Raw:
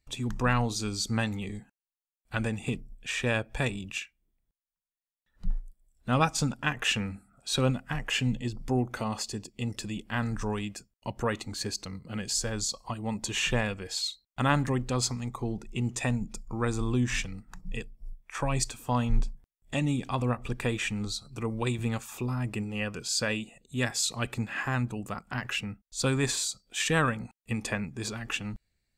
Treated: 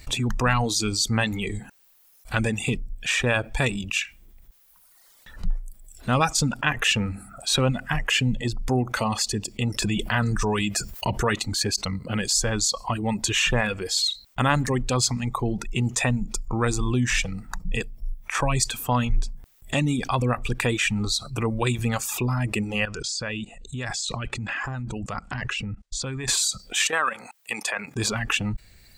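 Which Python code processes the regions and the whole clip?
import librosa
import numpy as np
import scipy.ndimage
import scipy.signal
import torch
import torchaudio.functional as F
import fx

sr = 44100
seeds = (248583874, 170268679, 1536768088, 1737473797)

y = fx.chain(x, sr, fx.notch_comb(f0_hz=270.0),
    fx.env_flatten(amount_pct=50), at=(9.82, 11.35))
y = fx.chain(y, sr, fx.low_shelf(hz=100.0, db=9.5),
    fx.level_steps(step_db=22),
    fx.lowpass(hz=8200.0, slope=24), at=(22.85, 26.28))
y = fx.chain(y, sr, fx.highpass(hz=620.0, slope=12),
    fx.level_steps(step_db=10), at=(26.87, 27.96))
y = fx.dereverb_blind(y, sr, rt60_s=0.94)
y = fx.peak_eq(y, sr, hz=250.0, db=-3.0, octaves=1.9)
y = fx.env_flatten(y, sr, amount_pct=50)
y = F.gain(torch.from_numpy(y), 2.5).numpy()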